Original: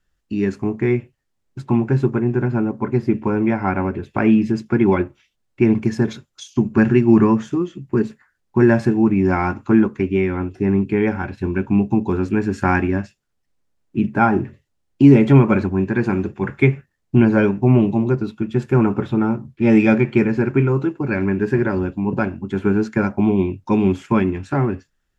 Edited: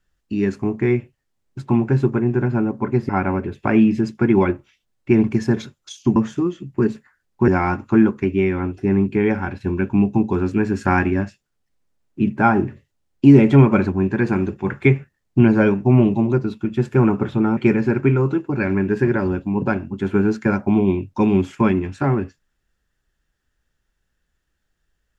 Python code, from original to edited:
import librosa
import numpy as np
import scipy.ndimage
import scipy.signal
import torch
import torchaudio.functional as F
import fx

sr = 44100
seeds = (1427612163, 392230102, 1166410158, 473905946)

y = fx.edit(x, sr, fx.cut(start_s=3.09, length_s=0.51),
    fx.cut(start_s=6.67, length_s=0.64),
    fx.cut(start_s=8.63, length_s=0.62),
    fx.cut(start_s=19.34, length_s=0.74), tone=tone)